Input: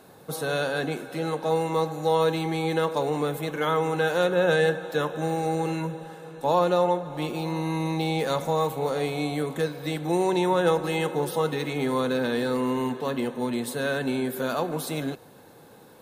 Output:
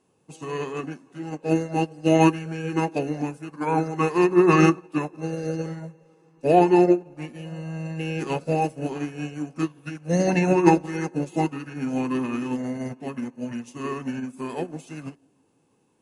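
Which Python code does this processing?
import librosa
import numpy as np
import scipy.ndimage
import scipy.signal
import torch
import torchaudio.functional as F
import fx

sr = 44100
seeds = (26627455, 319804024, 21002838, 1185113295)

y = fx.echo_wet_bandpass(x, sr, ms=164, feedback_pct=51, hz=440.0, wet_db=-16.5)
y = fx.formant_shift(y, sr, semitones=-6)
y = fx.upward_expand(y, sr, threshold_db=-35.0, expansion=2.5)
y = F.gain(torch.from_numpy(y), 8.0).numpy()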